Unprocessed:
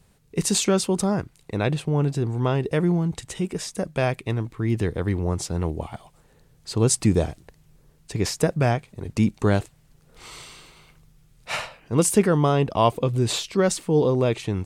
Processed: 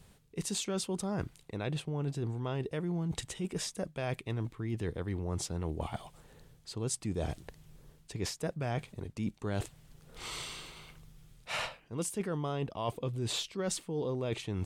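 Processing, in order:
parametric band 3,300 Hz +3.5 dB 0.41 octaves
reversed playback
downward compressor 6 to 1, threshold −33 dBFS, peak gain reduction 20 dB
reversed playback

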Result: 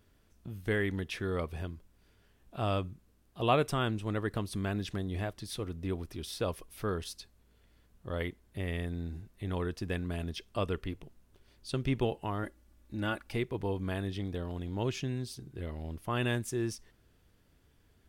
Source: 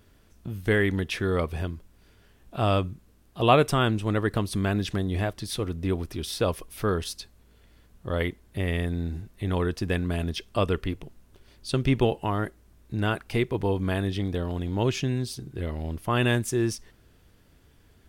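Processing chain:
0:12.43–0:13.33: comb filter 3.5 ms, depth 63%
level −8 dB

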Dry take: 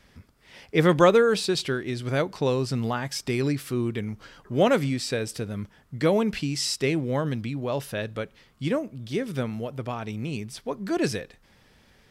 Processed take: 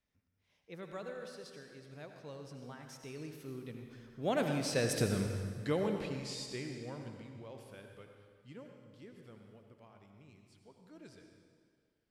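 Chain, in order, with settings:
source passing by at 0:05.04, 25 m/s, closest 4.5 metres
on a send: convolution reverb RT60 1.9 s, pre-delay 67 ms, DRR 4 dB

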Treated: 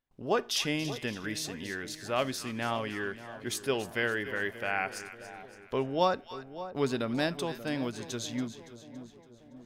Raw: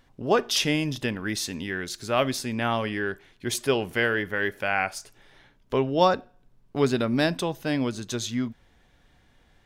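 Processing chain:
noise gate with hold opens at −49 dBFS
low-shelf EQ 230 Hz −3 dB
on a send: echo with a time of its own for lows and highs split 1,000 Hz, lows 583 ms, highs 282 ms, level −13 dB
on the sum: level −6 dB

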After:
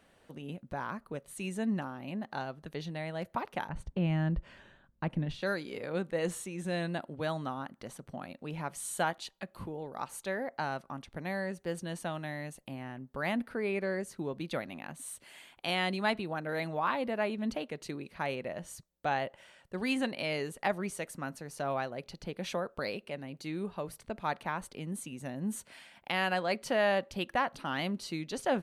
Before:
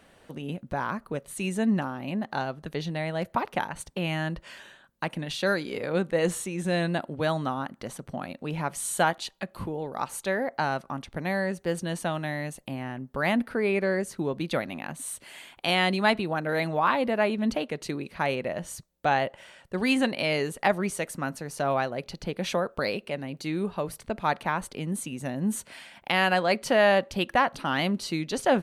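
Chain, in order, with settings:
0:03.69–0:05.42: RIAA equalisation playback
level −7.5 dB

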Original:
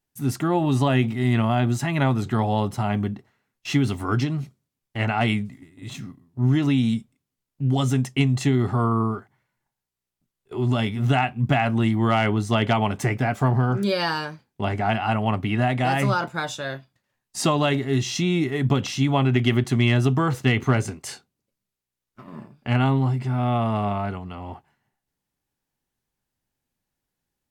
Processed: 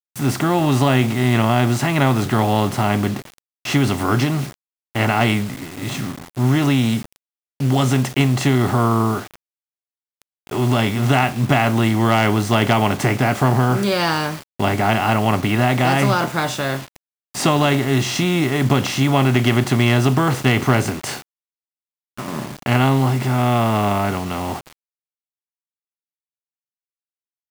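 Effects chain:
compressor on every frequency bin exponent 0.6
bit-depth reduction 6 bits, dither none
level +1.5 dB

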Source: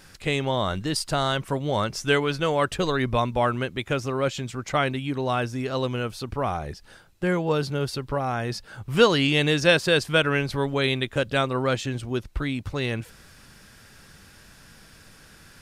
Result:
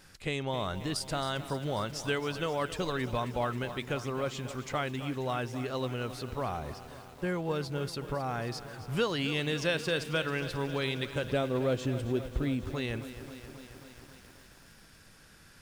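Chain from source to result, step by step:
0:11.24–0:12.65: low shelf with overshoot 770 Hz +6.5 dB, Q 1.5
downward compressor 2 to 1, threshold −23 dBFS, peak gain reduction 7 dB
feedback echo at a low word length 269 ms, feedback 80%, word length 7 bits, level −13 dB
level −6.5 dB

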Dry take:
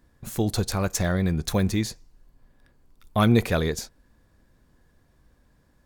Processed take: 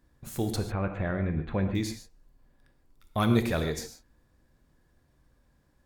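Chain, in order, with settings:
0:00.56–0:01.75: inverse Chebyshev low-pass filter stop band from 5,100 Hz, stop band 40 dB
reverb whose tail is shaped and stops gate 170 ms flat, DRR 6.5 dB
level −5.5 dB

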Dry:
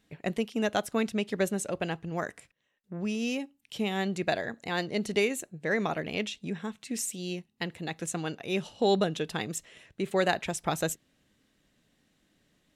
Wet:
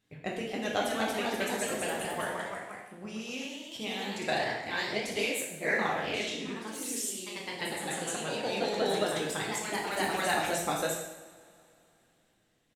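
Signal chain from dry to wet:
0:06.70–0:07.29: one scale factor per block 7 bits
harmonic and percussive parts rebalanced harmonic −10 dB
far-end echo of a speakerphone 110 ms, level −14 dB
coupled-rooms reverb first 0.83 s, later 3.2 s, from −21 dB, DRR −2.5 dB
delay with pitch and tempo change per echo 288 ms, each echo +1 semitone, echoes 3
level −4 dB

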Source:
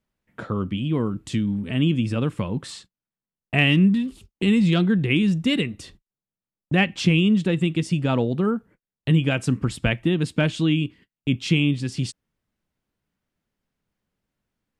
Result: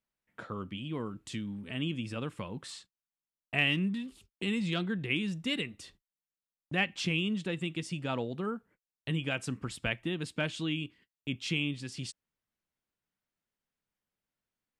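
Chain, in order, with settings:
low-shelf EQ 450 Hz −9 dB
level −7 dB

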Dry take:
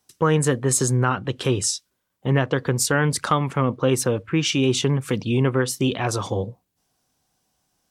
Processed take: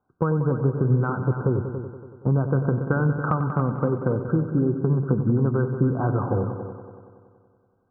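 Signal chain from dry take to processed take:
linear-phase brick-wall low-pass 1,600 Hz
downward compressor, threshold −22 dBFS, peak gain reduction 8 dB
echo machine with several playback heads 94 ms, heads all three, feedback 51%, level −12.5 dB
dynamic equaliser 150 Hz, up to +6 dB, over −37 dBFS, Q 0.73

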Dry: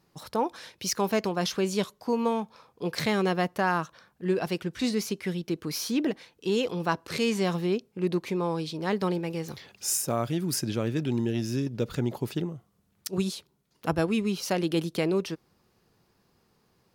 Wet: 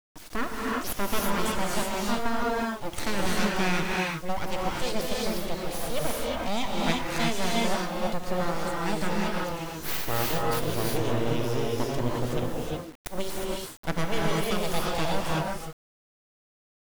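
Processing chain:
full-wave rectification
reverb whose tail is shaped and stops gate 390 ms rising, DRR −3 dB
bit-depth reduction 8 bits, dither none

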